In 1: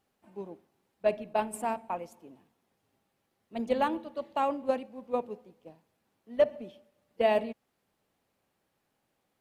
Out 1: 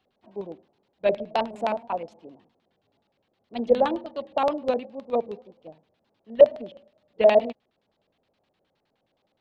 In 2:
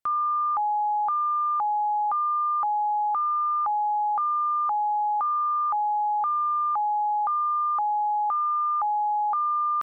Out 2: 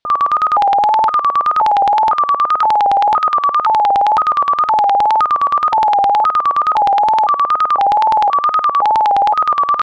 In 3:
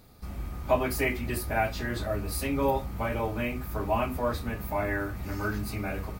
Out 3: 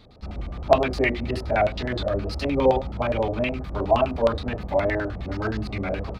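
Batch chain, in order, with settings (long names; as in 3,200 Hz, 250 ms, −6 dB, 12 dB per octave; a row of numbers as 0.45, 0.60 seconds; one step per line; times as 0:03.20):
auto-filter low-pass square 9.6 Hz 620–3,800 Hz
tape wow and flutter 80 cents
normalise the peak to −3 dBFS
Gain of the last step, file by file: +3.0, +12.5, +3.5 decibels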